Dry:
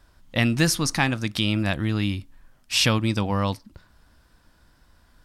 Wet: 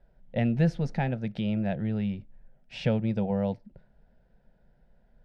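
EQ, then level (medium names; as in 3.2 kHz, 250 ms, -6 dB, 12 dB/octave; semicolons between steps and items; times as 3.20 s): low-pass 1.2 kHz 12 dB/octave; static phaser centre 300 Hz, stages 6; 0.0 dB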